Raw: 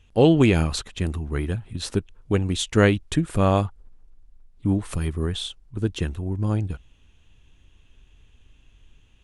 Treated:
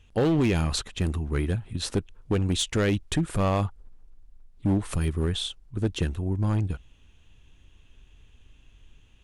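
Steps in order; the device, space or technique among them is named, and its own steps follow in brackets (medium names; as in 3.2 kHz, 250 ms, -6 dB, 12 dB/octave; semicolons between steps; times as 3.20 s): limiter into clipper (peak limiter -12.5 dBFS, peak gain reduction 7.5 dB; hard clipper -18 dBFS, distortion -14 dB)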